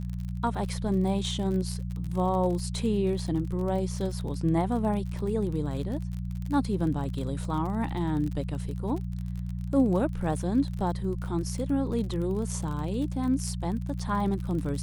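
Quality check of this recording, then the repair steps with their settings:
crackle 40/s -34 dBFS
hum 60 Hz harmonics 3 -33 dBFS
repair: de-click; de-hum 60 Hz, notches 3

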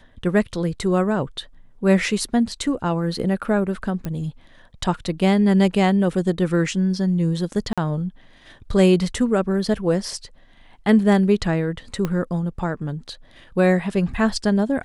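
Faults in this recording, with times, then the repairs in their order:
4.05 pop -16 dBFS
7.73–7.78 gap 46 ms
12.05 pop -11 dBFS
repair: de-click; interpolate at 7.73, 46 ms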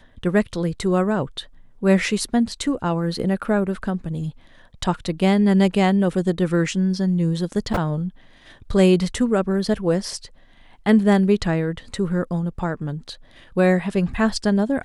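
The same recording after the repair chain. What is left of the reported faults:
4.05 pop
12.05 pop

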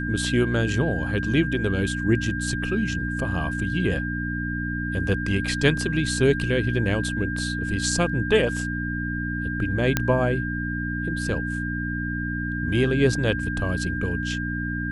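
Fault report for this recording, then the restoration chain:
hum 60 Hz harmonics 5 -29 dBFS
tone 1600 Hz -30 dBFS
9.97 pop -5 dBFS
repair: de-click; notch 1600 Hz, Q 30; de-hum 60 Hz, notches 5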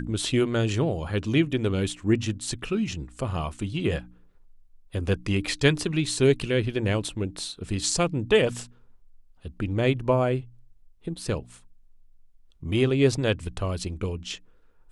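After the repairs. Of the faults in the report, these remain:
none

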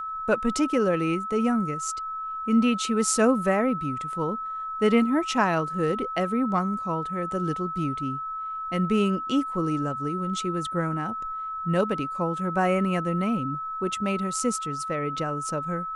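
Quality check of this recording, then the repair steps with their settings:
tone 1300 Hz -30 dBFS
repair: notch 1300 Hz, Q 30

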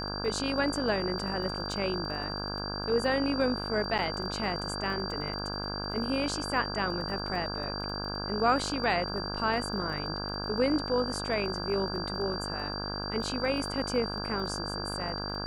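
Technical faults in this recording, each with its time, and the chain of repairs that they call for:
buzz 50 Hz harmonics 33 -37 dBFS
crackle 23/s -39 dBFS
tone 4700 Hz -37 dBFS
3.98–3.99 gap 8.1 ms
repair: de-click; notch 4700 Hz, Q 30; de-hum 50 Hz, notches 33; interpolate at 3.98, 8.1 ms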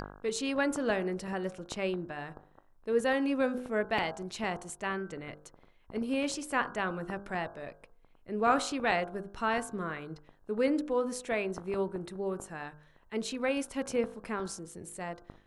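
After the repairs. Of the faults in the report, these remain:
none

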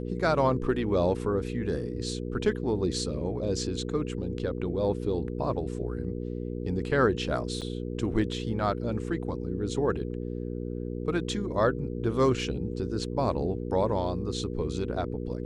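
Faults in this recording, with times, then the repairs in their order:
hum 60 Hz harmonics 8 -34 dBFS
7.61–7.62 gap 7.5 ms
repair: de-hum 60 Hz, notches 8; interpolate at 7.61, 7.5 ms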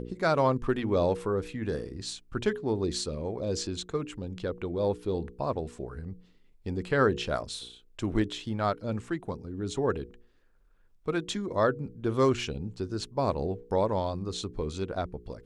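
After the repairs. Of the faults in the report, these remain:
none

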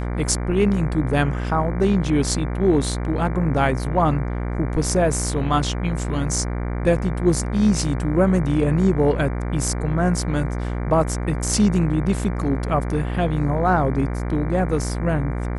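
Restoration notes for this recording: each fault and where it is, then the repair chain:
buzz 60 Hz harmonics 39 -25 dBFS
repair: de-hum 60 Hz, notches 39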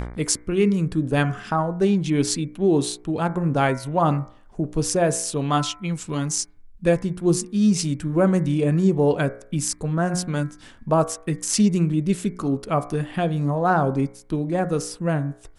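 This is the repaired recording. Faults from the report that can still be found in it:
none

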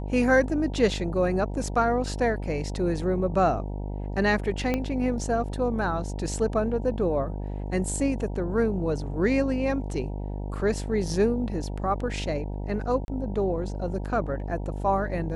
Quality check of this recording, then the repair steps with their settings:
buzz 50 Hz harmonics 19 -32 dBFS
4.74 pop -13 dBFS
13.05–13.08 gap 31 ms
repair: de-click; de-hum 50 Hz, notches 19; interpolate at 13.05, 31 ms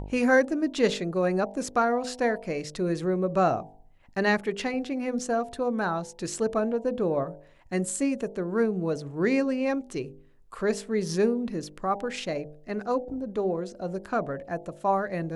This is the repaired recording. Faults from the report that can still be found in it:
4.74 pop

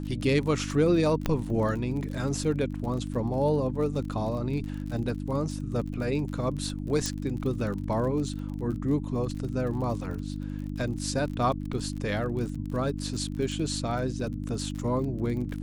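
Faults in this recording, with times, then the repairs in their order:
crackle 42/s -35 dBFS
hum 50 Hz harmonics 6 -34 dBFS
1.26 pop -13 dBFS
7.06 pop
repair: de-click; de-hum 50 Hz, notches 6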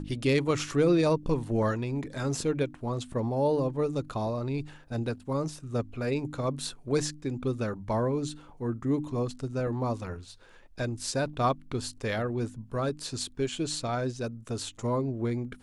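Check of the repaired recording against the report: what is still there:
7.06 pop

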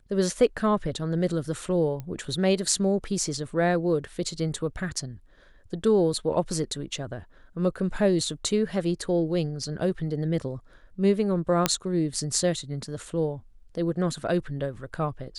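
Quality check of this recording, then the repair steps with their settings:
2 pop -23 dBFS
11.66 pop -5 dBFS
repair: de-click

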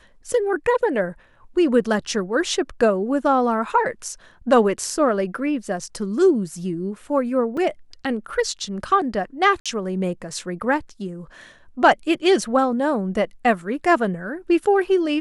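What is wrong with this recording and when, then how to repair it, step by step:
7.57 gap 4.5 ms
9.6–9.66 gap 56 ms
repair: interpolate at 7.57, 4.5 ms; interpolate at 9.6, 56 ms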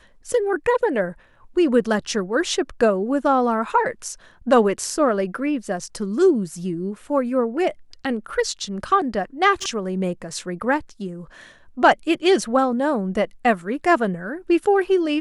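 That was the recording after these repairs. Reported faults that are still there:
none

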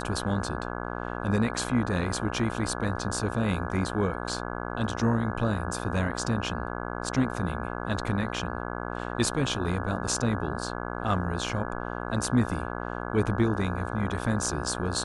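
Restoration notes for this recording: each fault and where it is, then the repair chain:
buzz 60 Hz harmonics 28 -34 dBFS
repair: de-hum 60 Hz, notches 28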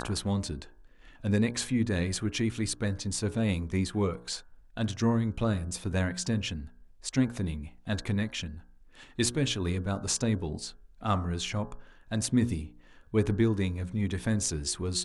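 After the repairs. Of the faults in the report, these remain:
none

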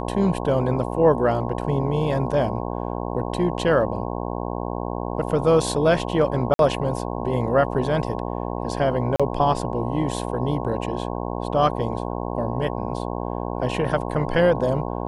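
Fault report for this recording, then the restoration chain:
buzz 60 Hz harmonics 18 -28 dBFS
6.54–6.59 gap 52 ms
9.16–9.2 gap 36 ms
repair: de-hum 60 Hz, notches 18; interpolate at 6.54, 52 ms; interpolate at 9.16, 36 ms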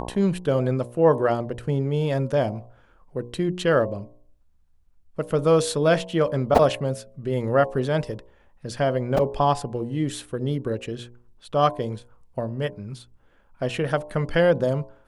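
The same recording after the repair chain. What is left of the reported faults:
none

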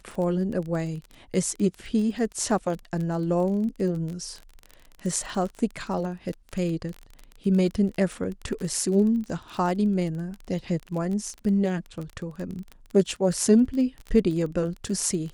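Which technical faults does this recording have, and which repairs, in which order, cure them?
crackle 25/s -31 dBFS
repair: de-click

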